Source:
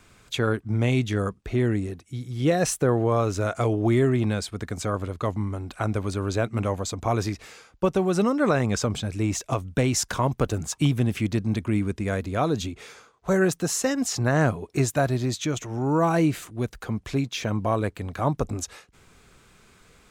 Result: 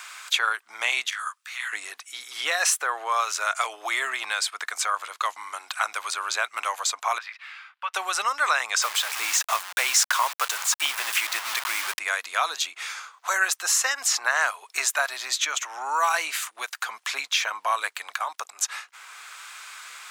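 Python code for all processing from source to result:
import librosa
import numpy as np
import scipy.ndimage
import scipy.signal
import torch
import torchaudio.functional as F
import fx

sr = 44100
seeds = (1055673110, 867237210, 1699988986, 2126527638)

y = fx.chain(x, sr, fx.ladder_highpass(hz=900.0, resonance_pct=30),
    fx.high_shelf(hz=3500.0, db=9.5),
    fx.detune_double(cents=56), at=(1.1, 1.73))
y = fx.chain(y, sr, fx.highpass(hz=1400.0, slope=12),
    fx.air_absorb(metres=480.0), at=(7.18, 7.94))
y = fx.chain(y, sr, fx.zero_step(step_db=-35.5),
    fx.quant_dither(seeds[0], bits=6, dither='none'),
    fx.highpass(hz=180.0, slope=24), at=(8.82, 11.99))
y = fx.chain(y, sr, fx.highpass(hz=180.0, slope=12),
    fx.level_steps(step_db=15), at=(18.16, 18.61))
y = scipy.signal.sosfilt(scipy.signal.butter(4, 1000.0, 'highpass', fs=sr, output='sos'), y)
y = fx.band_squash(y, sr, depth_pct=40)
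y = F.gain(torch.from_numpy(y), 8.5).numpy()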